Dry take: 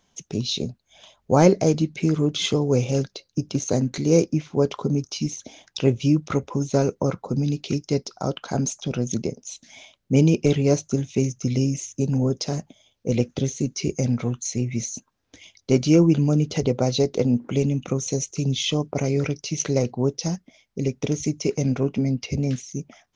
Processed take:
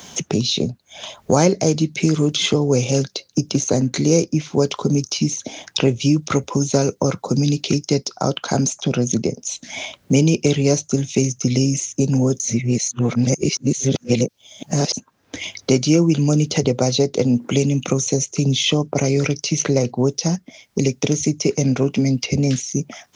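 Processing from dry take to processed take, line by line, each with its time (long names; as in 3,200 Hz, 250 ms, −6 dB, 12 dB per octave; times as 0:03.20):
0:12.40–0:14.93: reverse
whole clip: high-pass filter 88 Hz; high-shelf EQ 4,400 Hz +7 dB; multiband upward and downward compressor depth 70%; level +4 dB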